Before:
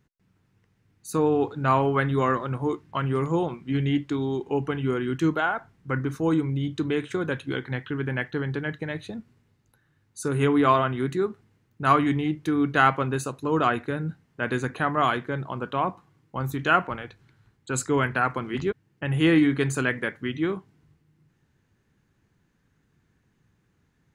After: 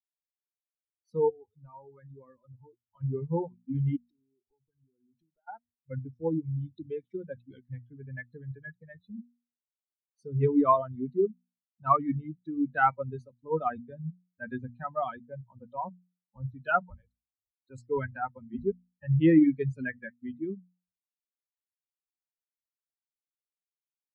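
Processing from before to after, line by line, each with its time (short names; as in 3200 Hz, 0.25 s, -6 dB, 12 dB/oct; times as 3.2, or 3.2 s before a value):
1.29–3.01 compressor 2:1, threshold -33 dBFS
3.96–5.48 compressor 12:1, threshold -35 dBFS
16.81–17.98 bell 180 Hz -9 dB 0.44 oct
whole clip: per-bin expansion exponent 3; LPF 1200 Hz 12 dB/oct; notches 60/120/180/240 Hz; gain +3 dB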